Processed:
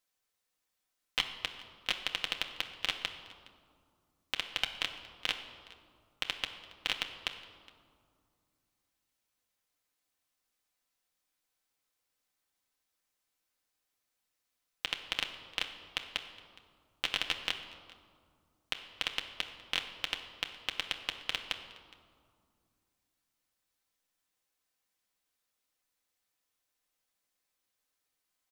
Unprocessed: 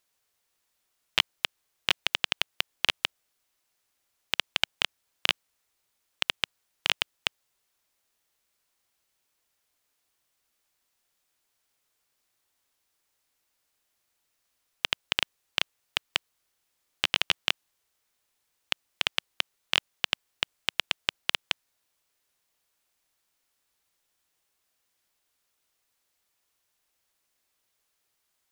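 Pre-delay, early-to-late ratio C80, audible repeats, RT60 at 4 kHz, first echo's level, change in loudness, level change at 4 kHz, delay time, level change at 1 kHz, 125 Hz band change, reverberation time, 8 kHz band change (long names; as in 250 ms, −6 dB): 4 ms, 10.0 dB, 1, 1.3 s, −22.0 dB, −7.0 dB, −7.0 dB, 415 ms, −6.5 dB, −7.0 dB, 2.2 s, −7.0 dB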